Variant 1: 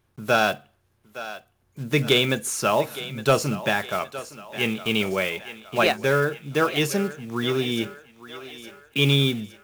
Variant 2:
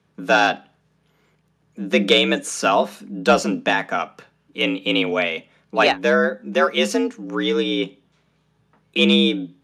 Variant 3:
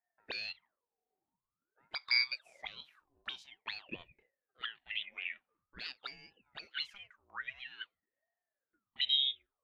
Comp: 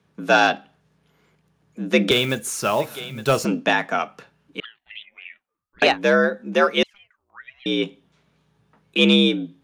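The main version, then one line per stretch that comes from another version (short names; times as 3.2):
2
2.11–3.45 from 1
4.6–5.82 from 3
6.83–7.66 from 3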